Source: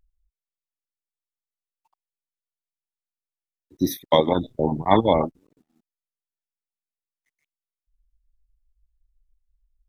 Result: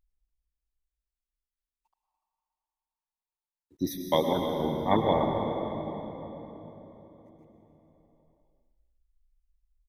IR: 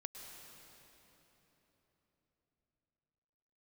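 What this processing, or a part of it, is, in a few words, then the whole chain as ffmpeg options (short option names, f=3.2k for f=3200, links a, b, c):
cave: -filter_complex "[0:a]aecho=1:1:293:0.178[a];[1:a]atrim=start_sample=2205[b];[a][b]afir=irnorm=-1:irlink=0,volume=-2.5dB"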